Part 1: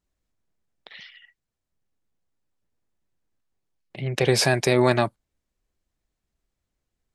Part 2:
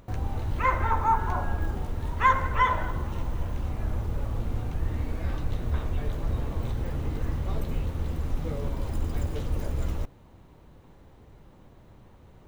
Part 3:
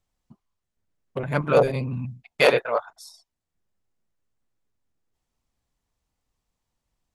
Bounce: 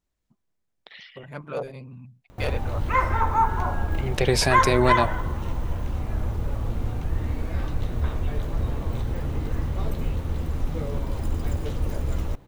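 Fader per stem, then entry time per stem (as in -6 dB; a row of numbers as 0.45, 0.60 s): -1.5, +2.5, -13.0 dB; 0.00, 2.30, 0.00 s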